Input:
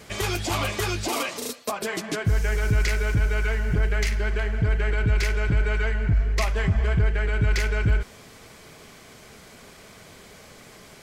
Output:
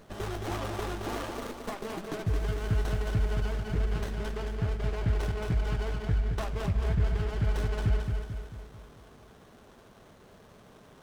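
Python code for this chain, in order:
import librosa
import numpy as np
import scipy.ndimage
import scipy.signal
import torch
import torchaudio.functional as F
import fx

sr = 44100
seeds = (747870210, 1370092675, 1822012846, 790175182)

y = fx.echo_feedback(x, sr, ms=221, feedback_pct=50, wet_db=-5.0)
y = fx.running_max(y, sr, window=17)
y = y * 10.0 ** (-7.0 / 20.0)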